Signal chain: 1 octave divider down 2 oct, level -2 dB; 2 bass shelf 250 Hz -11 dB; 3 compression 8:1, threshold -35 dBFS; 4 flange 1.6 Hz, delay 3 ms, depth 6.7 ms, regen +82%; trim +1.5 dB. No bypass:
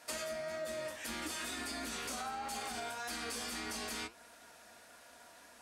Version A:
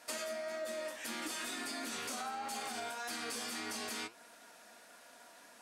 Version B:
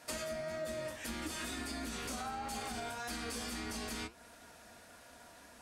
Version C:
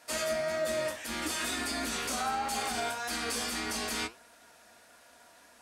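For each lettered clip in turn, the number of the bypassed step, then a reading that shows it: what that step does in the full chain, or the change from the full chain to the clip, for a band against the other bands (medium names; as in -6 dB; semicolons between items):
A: 1, 125 Hz band -7.0 dB; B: 2, 125 Hz band +8.5 dB; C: 3, mean gain reduction 5.5 dB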